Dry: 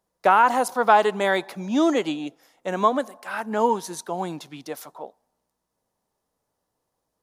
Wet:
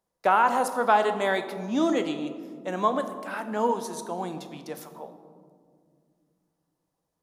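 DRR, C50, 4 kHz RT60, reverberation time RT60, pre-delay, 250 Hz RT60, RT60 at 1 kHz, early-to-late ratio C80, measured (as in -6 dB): 8.5 dB, 10.5 dB, 0.95 s, 2.1 s, 4 ms, 3.4 s, 1.8 s, 12.0 dB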